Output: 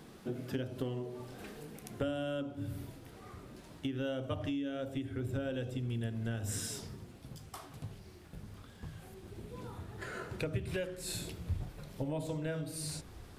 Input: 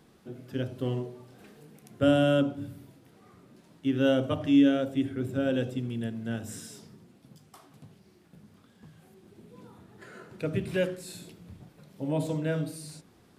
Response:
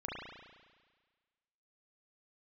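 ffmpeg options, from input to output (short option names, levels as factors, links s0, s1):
-af "acompressor=threshold=0.0126:ratio=10,asubboost=boost=11:cutoff=57,volume=2"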